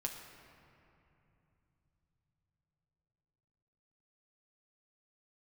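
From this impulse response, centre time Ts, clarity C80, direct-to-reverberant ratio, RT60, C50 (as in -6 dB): 59 ms, 6.0 dB, 1.5 dB, 3.0 s, 5.0 dB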